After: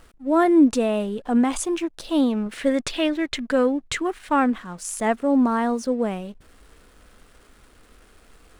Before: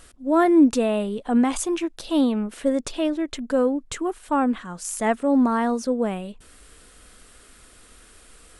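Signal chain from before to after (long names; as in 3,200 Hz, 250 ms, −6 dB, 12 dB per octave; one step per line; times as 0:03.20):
0:02.46–0:04.50: octave-band graphic EQ 125/2,000/4,000 Hz +5/+10/+5 dB
slack as between gear wheels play −45 dBFS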